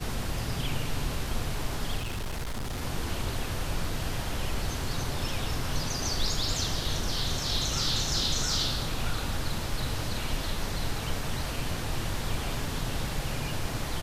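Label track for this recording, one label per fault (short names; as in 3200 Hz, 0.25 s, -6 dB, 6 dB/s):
1.980000	2.810000	clipped -29.5 dBFS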